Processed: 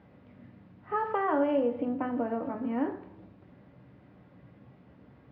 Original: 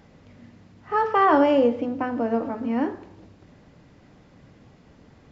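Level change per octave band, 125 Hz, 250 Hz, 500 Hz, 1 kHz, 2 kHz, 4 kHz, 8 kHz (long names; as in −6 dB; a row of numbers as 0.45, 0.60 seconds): −5.5 dB, −6.5 dB, −8.0 dB, −10.0 dB, −9.5 dB, below −10 dB, can't be measured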